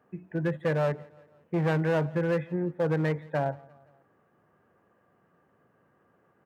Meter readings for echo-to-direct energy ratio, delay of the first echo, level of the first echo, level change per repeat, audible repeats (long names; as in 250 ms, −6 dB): −22.5 dB, 172 ms, −24.0 dB, −5.5 dB, 2